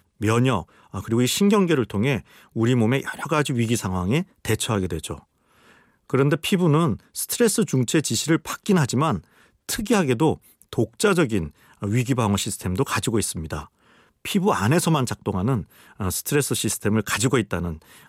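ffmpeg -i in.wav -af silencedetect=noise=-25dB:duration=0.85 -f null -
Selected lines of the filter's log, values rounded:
silence_start: 5.13
silence_end: 6.14 | silence_duration: 1.01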